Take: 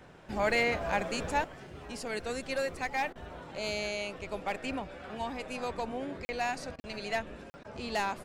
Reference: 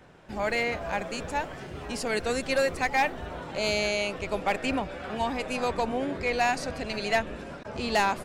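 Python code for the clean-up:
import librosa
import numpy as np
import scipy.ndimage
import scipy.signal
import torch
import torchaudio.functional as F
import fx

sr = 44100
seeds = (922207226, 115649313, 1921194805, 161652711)

y = fx.fix_interpolate(x, sr, at_s=(6.25, 6.8, 7.5), length_ms=40.0)
y = fx.fix_interpolate(y, sr, at_s=(3.13, 6.76), length_ms=24.0)
y = fx.fix_level(y, sr, at_s=1.44, step_db=7.5)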